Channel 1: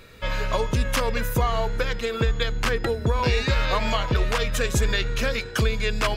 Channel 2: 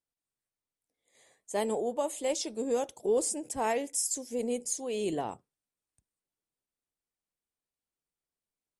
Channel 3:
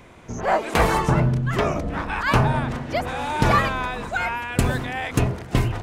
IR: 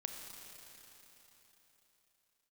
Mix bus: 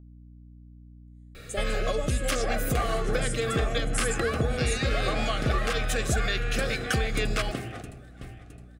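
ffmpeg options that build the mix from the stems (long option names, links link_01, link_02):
-filter_complex "[0:a]bandreject=frequency=104.4:width_type=h:width=4,bandreject=frequency=208.8:width_type=h:width=4,bandreject=frequency=313.2:width_type=h:width=4,bandreject=frequency=417.6:width_type=h:width=4,bandreject=frequency=522:width_type=h:width=4,bandreject=frequency=626.4:width_type=h:width=4,bandreject=frequency=730.8:width_type=h:width=4,bandreject=frequency=835.2:width_type=h:width=4,bandreject=frequency=939.6:width_type=h:width=4,bandreject=frequency=1044:width_type=h:width=4,bandreject=frequency=1148.4:width_type=h:width=4,bandreject=frequency=1252.8:width_type=h:width=4,bandreject=frequency=1357.2:width_type=h:width=4,bandreject=frequency=1461.6:width_type=h:width=4,bandreject=frequency=1566:width_type=h:width=4,bandreject=frequency=1670.4:width_type=h:width=4,bandreject=frequency=1774.8:width_type=h:width=4,bandreject=frequency=1879.2:width_type=h:width=4,bandreject=frequency=1983.6:width_type=h:width=4,bandreject=frequency=2088:width_type=h:width=4,bandreject=frequency=2192.4:width_type=h:width=4,bandreject=frequency=2296.8:width_type=h:width=4,bandreject=frequency=2401.2:width_type=h:width=4,bandreject=frequency=2505.6:width_type=h:width=4,bandreject=frequency=2610:width_type=h:width=4,bandreject=frequency=2714.4:width_type=h:width=4,bandreject=frequency=2818.8:width_type=h:width=4,bandreject=frequency=2923.2:width_type=h:width=4,bandreject=frequency=3027.6:width_type=h:width=4,bandreject=frequency=3132:width_type=h:width=4,bandreject=frequency=3236.4:width_type=h:width=4,acompressor=threshold=-29dB:ratio=2.5,adelay=1350,volume=2.5dB[link_01];[1:a]agate=range=-27dB:threshold=-51dB:ratio=16:detection=peak,volume=2dB[link_02];[2:a]adelay=2000,volume=-2dB,asplit=2[link_03][link_04];[link_04]volume=-20dB[link_05];[link_02][link_03]amix=inputs=2:normalize=0,highpass=160,acompressor=threshold=-34dB:ratio=2.5,volume=0dB[link_06];[link_05]aecho=0:1:664|1328|1992|2656|3320|3984:1|0.41|0.168|0.0689|0.0283|0.0116[link_07];[link_01][link_06][link_07]amix=inputs=3:normalize=0,aeval=exprs='val(0)+0.00447*(sin(2*PI*60*n/s)+sin(2*PI*2*60*n/s)/2+sin(2*PI*3*60*n/s)/3+sin(2*PI*4*60*n/s)/4+sin(2*PI*5*60*n/s)/5)':channel_layout=same,aexciter=amount=1.5:drive=2:freq=8300,asuperstop=centerf=950:order=8:qfactor=4.1"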